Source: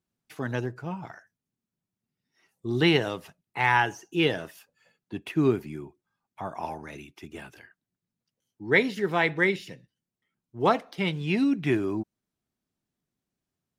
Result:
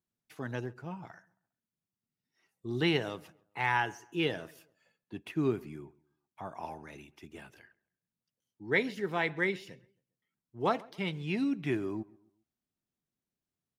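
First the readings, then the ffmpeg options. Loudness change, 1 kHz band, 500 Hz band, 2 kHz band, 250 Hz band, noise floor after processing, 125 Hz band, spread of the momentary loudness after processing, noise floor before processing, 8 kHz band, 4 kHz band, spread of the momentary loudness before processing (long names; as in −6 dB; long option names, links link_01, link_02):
−7.0 dB, −7.0 dB, −7.0 dB, −7.0 dB, −7.0 dB, below −85 dBFS, −7.0 dB, 21 LU, below −85 dBFS, −7.0 dB, −7.0 dB, 21 LU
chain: -filter_complex "[0:a]asplit=2[link_01][link_02];[link_02]adelay=135,lowpass=frequency=2200:poles=1,volume=-23dB,asplit=2[link_03][link_04];[link_04]adelay=135,lowpass=frequency=2200:poles=1,volume=0.38,asplit=2[link_05][link_06];[link_06]adelay=135,lowpass=frequency=2200:poles=1,volume=0.38[link_07];[link_01][link_03][link_05][link_07]amix=inputs=4:normalize=0,volume=-7dB"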